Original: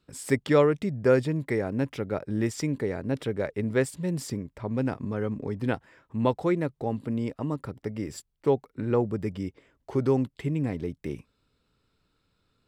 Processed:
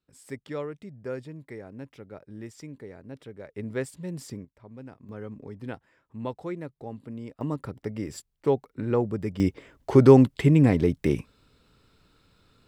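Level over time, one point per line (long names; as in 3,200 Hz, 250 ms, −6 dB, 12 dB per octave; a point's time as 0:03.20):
−13.5 dB
from 0:03.55 −6 dB
from 0:04.45 −16 dB
from 0:05.09 −9 dB
from 0:07.41 0 dB
from 0:09.40 +10 dB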